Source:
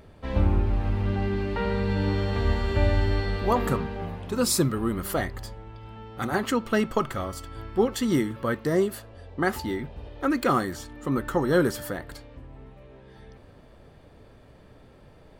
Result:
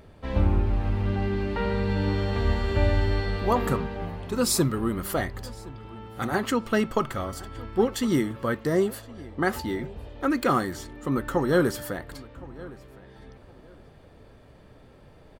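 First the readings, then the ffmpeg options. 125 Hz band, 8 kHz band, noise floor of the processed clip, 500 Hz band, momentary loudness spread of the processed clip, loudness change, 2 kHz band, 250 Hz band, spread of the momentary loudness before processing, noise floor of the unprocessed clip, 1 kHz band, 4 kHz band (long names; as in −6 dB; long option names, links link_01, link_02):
0.0 dB, 0.0 dB, −52 dBFS, 0.0 dB, 16 LU, 0.0 dB, 0.0 dB, 0.0 dB, 15 LU, −52 dBFS, 0.0 dB, 0.0 dB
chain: -filter_complex "[0:a]asplit=2[link_01][link_02];[link_02]adelay=1065,lowpass=frequency=3900:poles=1,volume=-20dB,asplit=2[link_03][link_04];[link_04]adelay=1065,lowpass=frequency=3900:poles=1,volume=0.24[link_05];[link_01][link_03][link_05]amix=inputs=3:normalize=0"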